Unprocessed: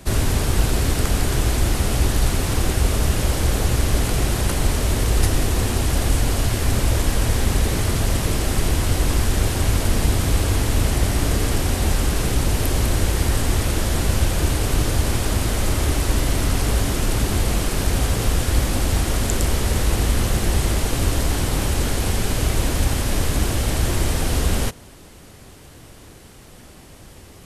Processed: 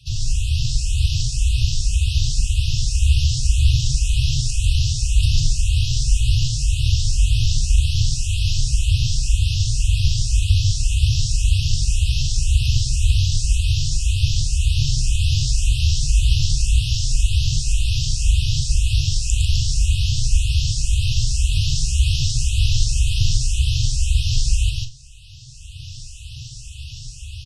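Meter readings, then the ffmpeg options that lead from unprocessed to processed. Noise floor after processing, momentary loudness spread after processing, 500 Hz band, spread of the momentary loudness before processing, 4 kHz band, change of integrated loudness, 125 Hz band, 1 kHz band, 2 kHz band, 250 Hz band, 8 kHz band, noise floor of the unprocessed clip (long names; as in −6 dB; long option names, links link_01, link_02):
−36 dBFS, 3 LU, below −40 dB, 2 LU, +4.0 dB, +1.0 dB, +2.5 dB, below −40 dB, −6.0 dB, below −10 dB, 0.0 dB, −44 dBFS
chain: -filter_complex "[0:a]equalizer=frequency=5400:width_type=o:width=0.21:gain=4.5,acrossover=split=120[link_01][link_02];[link_01]acrusher=samples=37:mix=1:aa=0.000001[link_03];[link_03][link_02]amix=inputs=2:normalize=0,lowpass=frequency=7500:width=0.5412,lowpass=frequency=7500:width=1.3066,asplit=2[link_04][link_05];[link_05]adelay=42,volume=-10.5dB[link_06];[link_04][link_06]amix=inputs=2:normalize=0,aecho=1:1:102|145.8:0.316|0.794,dynaudnorm=framelen=530:gausssize=3:maxgain=11.5dB,afftfilt=real='re*(1-between(b*sr/4096,150,2500))':imag='im*(1-between(b*sr/4096,150,2500))':win_size=4096:overlap=0.75,asplit=2[link_07][link_08];[link_08]afreqshift=1.9[link_09];[link_07][link_09]amix=inputs=2:normalize=1"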